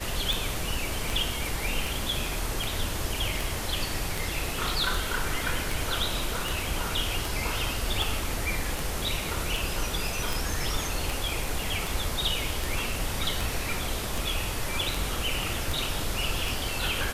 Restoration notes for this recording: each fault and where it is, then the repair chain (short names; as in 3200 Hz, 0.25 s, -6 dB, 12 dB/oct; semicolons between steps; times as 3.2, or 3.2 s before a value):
tick 78 rpm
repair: de-click